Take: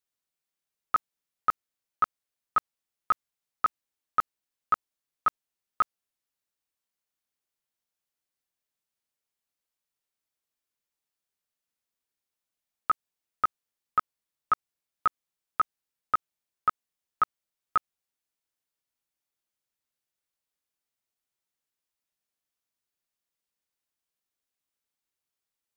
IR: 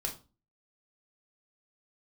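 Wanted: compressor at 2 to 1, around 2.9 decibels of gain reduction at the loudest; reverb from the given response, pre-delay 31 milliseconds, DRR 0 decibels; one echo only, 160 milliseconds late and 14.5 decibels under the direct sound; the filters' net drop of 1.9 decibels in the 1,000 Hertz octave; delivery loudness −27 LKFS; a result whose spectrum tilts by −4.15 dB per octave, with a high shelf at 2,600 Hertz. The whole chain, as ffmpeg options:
-filter_complex "[0:a]equalizer=frequency=1000:width_type=o:gain=-4,highshelf=frequency=2600:gain=4.5,acompressor=threshold=-26dB:ratio=2,aecho=1:1:160:0.188,asplit=2[link_01][link_02];[1:a]atrim=start_sample=2205,adelay=31[link_03];[link_02][link_03]afir=irnorm=-1:irlink=0,volume=-2dB[link_04];[link_01][link_04]amix=inputs=2:normalize=0,volume=6dB"

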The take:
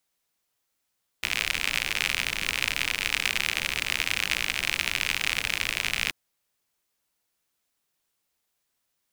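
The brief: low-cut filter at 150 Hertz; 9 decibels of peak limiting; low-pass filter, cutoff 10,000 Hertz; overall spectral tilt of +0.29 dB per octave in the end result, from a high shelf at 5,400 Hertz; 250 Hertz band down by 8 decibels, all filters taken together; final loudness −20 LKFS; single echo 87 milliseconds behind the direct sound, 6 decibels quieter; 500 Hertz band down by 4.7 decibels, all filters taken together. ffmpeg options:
ffmpeg -i in.wav -af "highpass=150,lowpass=10000,equalizer=frequency=250:width_type=o:gain=-9,equalizer=frequency=500:width_type=o:gain=-3.5,highshelf=frequency=5400:gain=-9,alimiter=limit=-17.5dB:level=0:latency=1,aecho=1:1:87:0.501,volume=13dB" out.wav

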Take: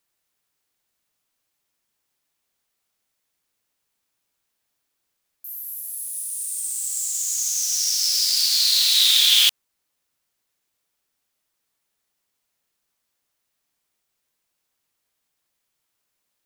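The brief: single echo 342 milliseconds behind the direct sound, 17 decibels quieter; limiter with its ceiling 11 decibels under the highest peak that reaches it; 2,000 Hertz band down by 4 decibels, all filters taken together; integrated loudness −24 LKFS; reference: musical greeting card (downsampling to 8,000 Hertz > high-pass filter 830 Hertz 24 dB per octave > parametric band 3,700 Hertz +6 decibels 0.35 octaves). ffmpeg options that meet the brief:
ffmpeg -i in.wav -af "equalizer=frequency=2000:width_type=o:gain=-6.5,alimiter=limit=-16dB:level=0:latency=1,aecho=1:1:342:0.141,aresample=8000,aresample=44100,highpass=frequency=830:width=0.5412,highpass=frequency=830:width=1.3066,equalizer=frequency=3700:width_type=o:width=0.35:gain=6,volume=1.5dB" out.wav

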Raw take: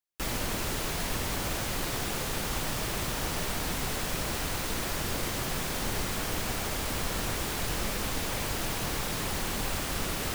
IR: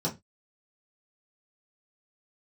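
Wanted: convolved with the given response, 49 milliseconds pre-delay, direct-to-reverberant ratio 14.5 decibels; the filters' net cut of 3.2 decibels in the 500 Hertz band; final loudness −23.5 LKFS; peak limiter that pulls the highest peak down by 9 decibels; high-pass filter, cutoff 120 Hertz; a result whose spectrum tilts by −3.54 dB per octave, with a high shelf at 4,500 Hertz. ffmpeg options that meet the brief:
-filter_complex "[0:a]highpass=120,equalizer=frequency=500:width_type=o:gain=-4,highshelf=frequency=4500:gain=-6.5,alimiter=level_in=7.5dB:limit=-24dB:level=0:latency=1,volume=-7.5dB,asplit=2[link_01][link_02];[1:a]atrim=start_sample=2205,adelay=49[link_03];[link_02][link_03]afir=irnorm=-1:irlink=0,volume=-21.5dB[link_04];[link_01][link_04]amix=inputs=2:normalize=0,volume=16dB"

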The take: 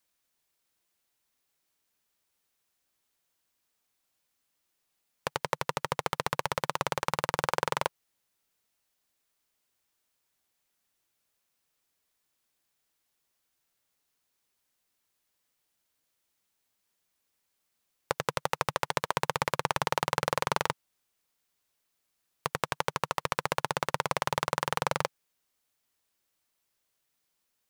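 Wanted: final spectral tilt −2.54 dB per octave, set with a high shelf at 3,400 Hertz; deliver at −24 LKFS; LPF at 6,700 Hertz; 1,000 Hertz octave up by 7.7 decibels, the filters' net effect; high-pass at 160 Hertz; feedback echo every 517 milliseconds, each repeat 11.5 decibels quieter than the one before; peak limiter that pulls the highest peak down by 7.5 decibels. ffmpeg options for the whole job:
ffmpeg -i in.wav -af "highpass=160,lowpass=6700,equalizer=frequency=1000:width_type=o:gain=8.5,highshelf=frequency=3400:gain=4,alimiter=limit=-10dB:level=0:latency=1,aecho=1:1:517|1034|1551:0.266|0.0718|0.0194,volume=7dB" out.wav

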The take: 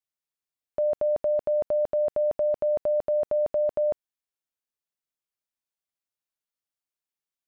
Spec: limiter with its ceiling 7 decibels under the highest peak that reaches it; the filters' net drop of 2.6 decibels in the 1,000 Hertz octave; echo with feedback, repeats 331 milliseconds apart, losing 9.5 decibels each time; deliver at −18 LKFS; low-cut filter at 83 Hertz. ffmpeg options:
ffmpeg -i in.wav -af "highpass=83,equalizer=frequency=1000:width_type=o:gain=-4.5,alimiter=level_in=3.5dB:limit=-24dB:level=0:latency=1,volume=-3.5dB,aecho=1:1:331|662|993|1324:0.335|0.111|0.0365|0.012,volume=16dB" out.wav

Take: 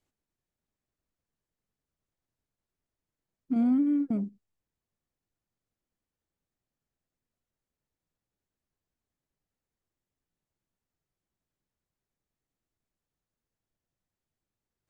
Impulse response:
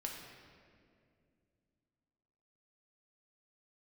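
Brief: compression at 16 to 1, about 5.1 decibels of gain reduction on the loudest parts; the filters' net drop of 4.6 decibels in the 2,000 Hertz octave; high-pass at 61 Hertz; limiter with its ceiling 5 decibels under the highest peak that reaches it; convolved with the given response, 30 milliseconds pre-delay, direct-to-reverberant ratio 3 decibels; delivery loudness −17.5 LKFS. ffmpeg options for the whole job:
-filter_complex "[0:a]highpass=61,equalizer=frequency=2000:width_type=o:gain=-6.5,acompressor=threshold=-27dB:ratio=16,alimiter=level_in=3.5dB:limit=-24dB:level=0:latency=1,volume=-3.5dB,asplit=2[link_01][link_02];[1:a]atrim=start_sample=2205,adelay=30[link_03];[link_02][link_03]afir=irnorm=-1:irlink=0,volume=-2.5dB[link_04];[link_01][link_04]amix=inputs=2:normalize=0,volume=16dB"

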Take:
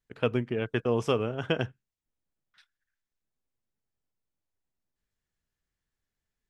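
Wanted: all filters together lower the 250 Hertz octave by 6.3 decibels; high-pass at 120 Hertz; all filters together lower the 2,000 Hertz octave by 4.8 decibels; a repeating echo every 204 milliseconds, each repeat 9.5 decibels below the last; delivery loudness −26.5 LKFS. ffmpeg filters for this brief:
ffmpeg -i in.wav -af "highpass=120,equalizer=frequency=250:width_type=o:gain=-8,equalizer=frequency=2000:width_type=o:gain=-7,aecho=1:1:204|408|612|816:0.335|0.111|0.0365|0.012,volume=6.5dB" out.wav

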